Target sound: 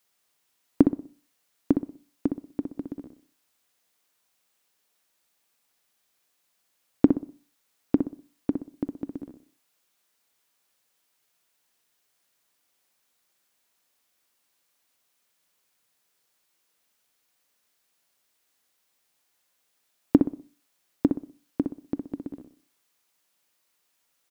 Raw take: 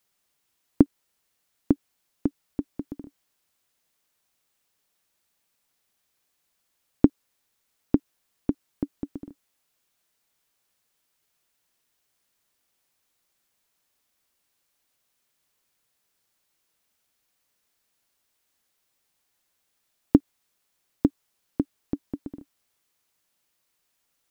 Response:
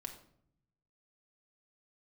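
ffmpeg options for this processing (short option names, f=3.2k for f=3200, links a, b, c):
-filter_complex "[0:a]lowshelf=f=110:g=-10.5,asplit=2[a][b];[b]adelay=62,lowpass=f=1.6k:p=1,volume=-6dB,asplit=2[c][d];[d]adelay=62,lowpass=f=1.6k:p=1,volume=0.34,asplit=2[e][f];[f]adelay=62,lowpass=f=1.6k:p=1,volume=0.34,asplit=2[g][h];[h]adelay=62,lowpass=f=1.6k:p=1,volume=0.34[i];[a][c][e][g][i]amix=inputs=5:normalize=0,asplit=2[j][k];[1:a]atrim=start_sample=2205,afade=t=out:st=0.31:d=0.01,atrim=end_sample=14112,lowshelf=f=390:g=-11.5[l];[k][l]afir=irnorm=-1:irlink=0,volume=-7.5dB[m];[j][m]amix=inputs=2:normalize=0"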